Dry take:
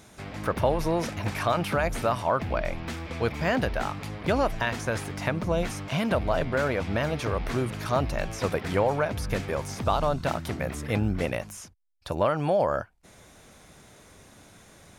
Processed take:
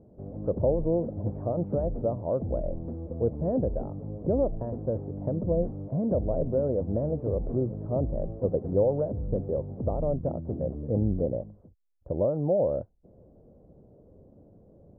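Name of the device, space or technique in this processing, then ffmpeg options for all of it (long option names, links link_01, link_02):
under water: -af "lowpass=frequency=550:width=0.5412,lowpass=frequency=550:width=1.3066,equalizer=frequency=530:width_type=o:width=0.42:gain=5"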